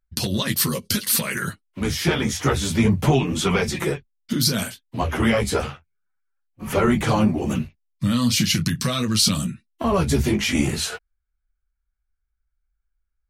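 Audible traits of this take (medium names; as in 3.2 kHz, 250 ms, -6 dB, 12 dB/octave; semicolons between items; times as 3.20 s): noise floor -77 dBFS; spectral tilt -4.5 dB/octave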